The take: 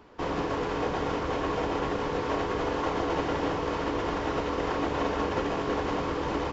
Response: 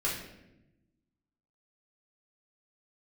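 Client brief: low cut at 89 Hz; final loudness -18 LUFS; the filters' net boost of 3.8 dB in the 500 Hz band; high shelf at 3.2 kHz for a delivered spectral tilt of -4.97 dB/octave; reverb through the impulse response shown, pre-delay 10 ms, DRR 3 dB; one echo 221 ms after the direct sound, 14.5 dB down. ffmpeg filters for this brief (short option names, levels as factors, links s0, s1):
-filter_complex "[0:a]highpass=89,equalizer=f=500:t=o:g=4.5,highshelf=f=3200:g=-3.5,aecho=1:1:221:0.188,asplit=2[s0][s1];[1:a]atrim=start_sample=2205,adelay=10[s2];[s1][s2]afir=irnorm=-1:irlink=0,volume=0.316[s3];[s0][s3]amix=inputs=2:normalize=0,volume=2.37"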